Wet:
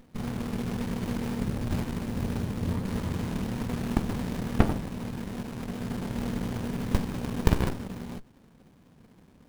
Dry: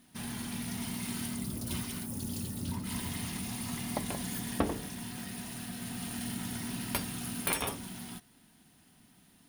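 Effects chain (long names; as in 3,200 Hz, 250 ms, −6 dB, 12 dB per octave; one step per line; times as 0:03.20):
windowed peak hold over 65 samples
level +8.5 dB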